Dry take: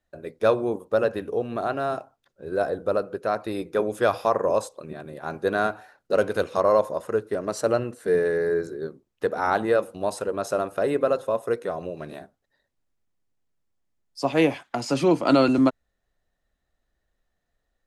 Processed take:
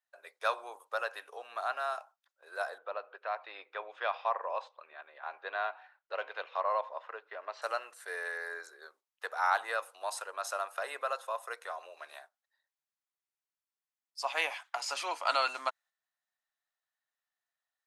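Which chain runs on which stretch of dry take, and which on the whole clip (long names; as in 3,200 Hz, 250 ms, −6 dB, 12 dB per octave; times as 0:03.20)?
0:02.78–0:07.62: low-pass filter 3,300 Hz 24 dB per octave + dynamic equaliser 1,400 Hz, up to −7 dB, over −41 dBFS, Q 2.3
whole clip: noise gate −45 dBFS, range −6 dB; high-pass filter 840 Hz 24 dB per octave; level −2.5 dB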